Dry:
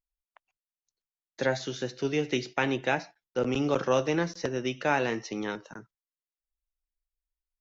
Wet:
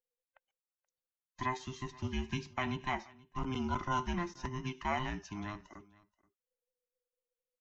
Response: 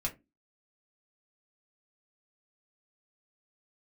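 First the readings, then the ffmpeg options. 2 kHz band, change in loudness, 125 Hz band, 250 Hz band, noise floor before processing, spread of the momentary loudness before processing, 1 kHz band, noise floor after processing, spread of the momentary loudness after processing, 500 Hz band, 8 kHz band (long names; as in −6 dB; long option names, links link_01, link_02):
−9.5 dB, −8.5 dB, −3.5 dB, −8.0 dB, below −85 dBFS, 9 LU, −3.5 dB, below −85 dBFS, 10 LU, −16.0 dB, can't be measured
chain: -filter_complex "[0:a]afftfilt=real='real(if(between(b,1,1008),(2*floor((b-1)/24)+1)*24-b,b),0)':imag='imag(if(between(b,1,1008),(2*floor((b-1)/24)+1)*24-b,b),0)*if(between(b,1,1008),-1,1)':win_size=2048:overlap=0.75,equalizer=frequency=4500:width_type=o:width=0.58:gain=-6,asplit=2[link_01][link_02];[link_02]aecho=0:1:479:0.0708[link_03];[link_01][link_03]amix=inputs=2:normalize=0,volume=-8dB"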